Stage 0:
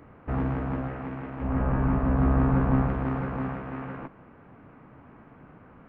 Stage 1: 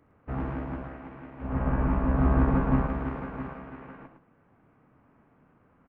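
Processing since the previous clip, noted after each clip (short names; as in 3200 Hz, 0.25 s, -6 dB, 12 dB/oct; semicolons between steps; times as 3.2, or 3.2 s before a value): on a send: tapped delay 66/109 ms -10.5/-5.5 dB; on the sum: upward expander 1.5:1, over -44 dBFS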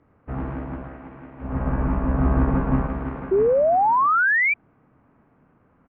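painted sound rise, 3.31–4.54, 370–2400 Hz -20 dBFS; air absorption 200 m; gain +3 dB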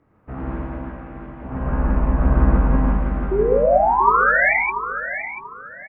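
on a send: feedback echo 0.687 s, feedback 28%, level -10.5 dB; on the sum: non-linear reverb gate 0.19 s rising, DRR -1.5 dB; gain -1.5 dB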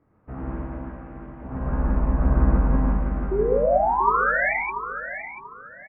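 air absorption 370 m; gain -3 dB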